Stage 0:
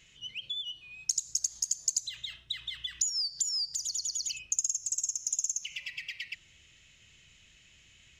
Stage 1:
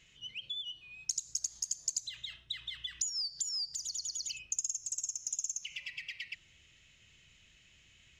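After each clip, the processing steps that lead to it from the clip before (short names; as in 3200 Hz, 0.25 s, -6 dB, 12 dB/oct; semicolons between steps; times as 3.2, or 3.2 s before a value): high shelf 7800 Hz -6.5 dB; gain -2.5 dB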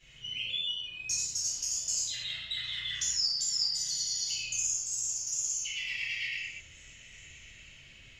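delay with a stepping band-pass 0.309 s, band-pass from 510 Hz, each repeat 0.7 oct, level -11.5 dB; reverb, pre-delay 4 ms, DRR -14 dB; gain -6 dB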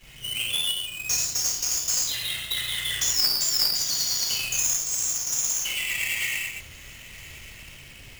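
half-waves squared off; gain +4.5 dB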